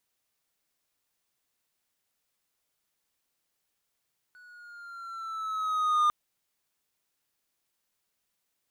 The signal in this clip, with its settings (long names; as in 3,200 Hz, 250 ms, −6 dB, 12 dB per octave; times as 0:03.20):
pitch glide with a swell triangle, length 1.75 s, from 1,480 Hz, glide −3.5 semitones, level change +31.5 dB, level −17.5 dB